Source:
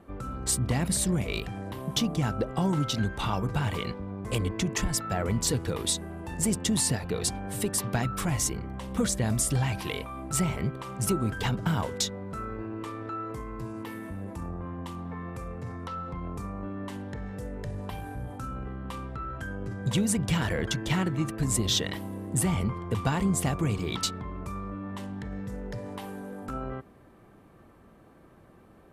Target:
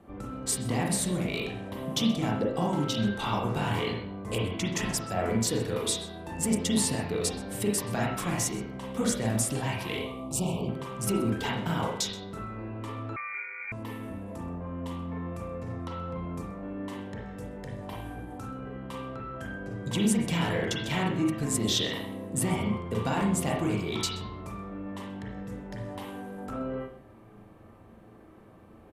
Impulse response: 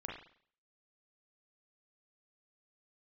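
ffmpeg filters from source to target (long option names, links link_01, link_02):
-filter_complex "[0:a]equalizer=frequency=1500:width_type=o:width=0.68:gain=-3.5,acrossover=split=150[link_01][link_02];[link_01]acompressor=threshold=-45dB:ratio=6[link_03];[link_03][link_02]amix=inputs=2:normalize=0,asettb=1/sr,asplit=3[link_04][link_05][link_06];[link_04]atrim=end=3.414[link_07];[link_05]atrim=start=3.41:end=3.98,asetpts=PTS-STARTPTS,afade=type=in:duration=0.004:curve=qsin,afade=type=out:start_time=0.566:duration=0.004:curve=qsin,asplit=2[link_08][link_09];[link_09]adelay=25,volume=-2dB[link_10];[link_08][link_10]amix=inputs=2:normalize=0,atrim=end_sample=25137[link_11];[link_06]atrim=start=3.976[link_12];[link_07][link_11]acrossfade=duration=0.004:curve1=hsin:curve2=qsin[link_13];[link_13][link_12]acrossfade=duration=0.004:curve1=qsin:curve2=hsin,asettb=1/sr,asplit=3[link_14][link_15][link_16];[link_14]atrim=end=9.974[link_17];[link_15]atrim=start=9.97:end=10.69,asetpts=PTS-STARTPTS,afade=type=in:duration=0.004:curve=qsin,afade=type=out:start_time=0.716:duration=0.004:curve=qsin,asuperstop=centerf=1700:order=12:qfactor=1.3[link_18];[link_16]atrim=start=10.686[link_19];[link_17][link_18]acrossfade=duration=0.004:curve1=hsin:curve2=qsin[link_20];[link_20][link_19]acrossfade=duration=0.004:curve1=qsin:curve2=hsin,aecho=1:1:128:0.1[link_21];[1:a]atrim=start_sample=2205[link_22];[link_21][link_22]afir=irnorm=-1:irlink=0,asettb=1/sr,asplit=3[link_23][link_24][link_25];[link_23]atrim=end=13.164[link_26];[link_24]atrim=start=13.16:end=13.72,asetpts=PTS-STARTPTS,afade=type=in:duration=0.004:curve=qsin,afade=type=out:start_time=0.556:duration=0.004:curve=qsin,lowpass=frequency=2100:width_type=q:width=0.5098,lowpass=frequency=2100:width_type=q:width=0.6013,lowpass=frequency=2100:width_type=q:width=0.9,lowpass=frequency=2100:width_type=q:width=2.563,afreqshift=-2500[link_27];[link_25]atrim=start=13.716[link_28];[link_26][link_27]acrossfade=duration=0.004:curve1=hsin:curve2=qsin[link_29];[link_29][link_28]acrossfade=duration=0.004:curve1=qsin:curve2=hsin,volume=3dB"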